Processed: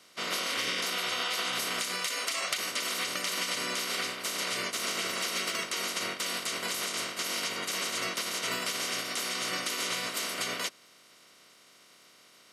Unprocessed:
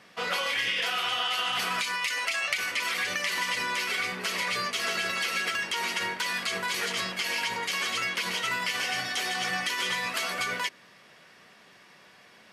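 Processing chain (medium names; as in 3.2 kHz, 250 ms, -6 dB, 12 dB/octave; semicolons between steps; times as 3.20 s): spectral peaks clipped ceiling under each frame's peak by 20 dB; high-pass 160 Hz 12 dB/octave; comb of notches 840 Hz; trim -1.5 dB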